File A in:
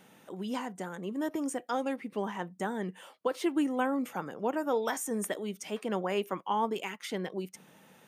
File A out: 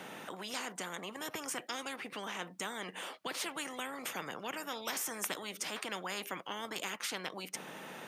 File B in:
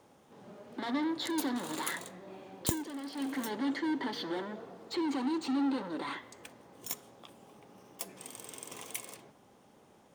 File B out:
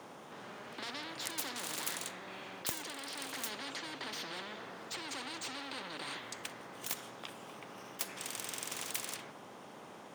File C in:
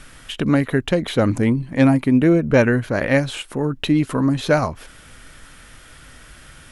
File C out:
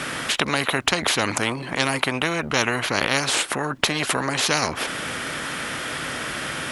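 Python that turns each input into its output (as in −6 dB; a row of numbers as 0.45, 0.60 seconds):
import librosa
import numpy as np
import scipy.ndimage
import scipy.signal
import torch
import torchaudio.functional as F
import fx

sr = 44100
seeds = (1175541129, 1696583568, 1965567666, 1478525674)

y = scipy.signal.sosfilt(scipy.signal.butter(2, 200.0, 'highpass', fs=sr, output='sos'), x)
y = fx.high_shelf(y, sr, hz=5100.0, db=-9.0)
y = fx.spectral_comp(y, sr, ratio=4.0)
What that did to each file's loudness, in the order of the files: −6.0, −5.0, −4.5 LU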